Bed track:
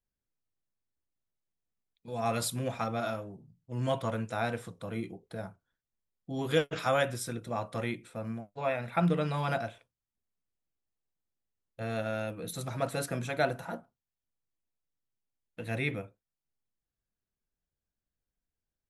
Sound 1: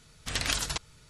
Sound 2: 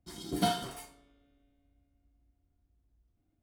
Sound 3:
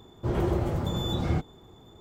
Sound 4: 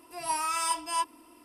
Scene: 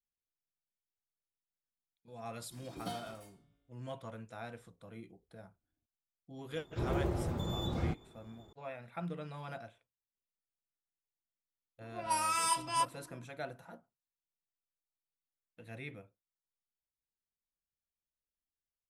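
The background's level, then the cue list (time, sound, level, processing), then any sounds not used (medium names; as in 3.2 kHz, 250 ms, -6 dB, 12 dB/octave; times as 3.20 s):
bed track -13.5 dB
2.44 s: add 2 -13 dB
6.53 s: add 3 -7.5 dB
11.81 s: add 4 -2.5 dB + level-controlled noise filter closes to 640 Hz, open at -26.5 dBFS
not used: 1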